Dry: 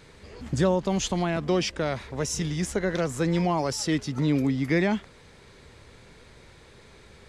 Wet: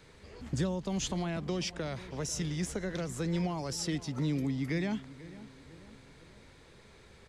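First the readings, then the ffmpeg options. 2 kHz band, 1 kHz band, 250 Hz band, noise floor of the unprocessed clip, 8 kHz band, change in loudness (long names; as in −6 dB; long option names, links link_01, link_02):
−9.5 dB, −11.5 dB, −7.5 dB, −52 dBFS, −5.5 dB, −8.0 dB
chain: -filter_complex "[0:a]acrossover=split=230|3000[link_01][link_02][link_03];[link_02]acompressor=threshold=-30dB:ratio=6[link_04];[link_01][link_04][link_03]amix=inputs=3:normalize=0,asplit=2[link_05][link_06];[link_06]adelay=492,lowpass=frequency=2100:poles=1,volume=-16.5dB,asplit=2[link_07][link_08];[link_08]adelay=492,lowpass=frequency=2100:poles=1,volume=0.47,asplit=2[link_09][link_10];[link_10]adelay=492,lowpass=frequency=2100:poles=1,volume=0.47,asplit=2[link_11][link_12];[link_12]adelay=492,lowpass=frequency=2100:poles=1,volume=0.47[link_13];[link_05][link_07][link_09][link_11][link_13]amix=inputs=5:normalize=0,volume=-5.5dB"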